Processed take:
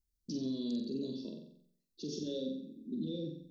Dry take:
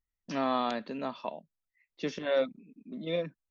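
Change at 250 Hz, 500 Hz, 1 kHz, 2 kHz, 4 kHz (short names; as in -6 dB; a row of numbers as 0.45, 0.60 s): +0.5 dB, -10.5 dB, under -35 dB, under -30 dB, -5.0 dB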